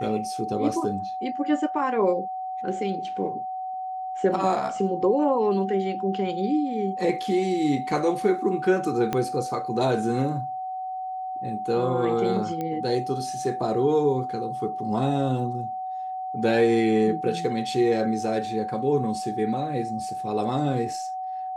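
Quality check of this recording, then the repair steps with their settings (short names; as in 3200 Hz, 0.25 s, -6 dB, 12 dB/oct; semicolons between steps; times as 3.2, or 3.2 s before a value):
tone 750 Hz -29 dBFS
9.13 pop -12 dBFS
12.61 pop -18 dBFS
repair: de-click; notch 750 Hz, Q 30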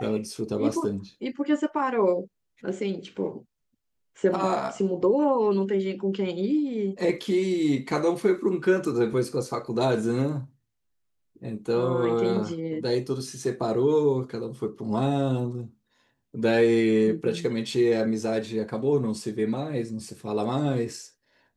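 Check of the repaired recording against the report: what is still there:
9.13 pop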